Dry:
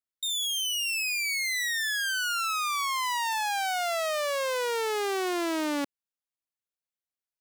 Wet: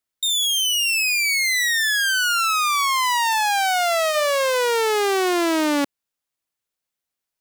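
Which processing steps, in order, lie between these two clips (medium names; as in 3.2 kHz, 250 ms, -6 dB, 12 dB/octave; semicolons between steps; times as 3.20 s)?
3.85–4.54 s: de-hum 206.6 Hz, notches 40; trim +9 dB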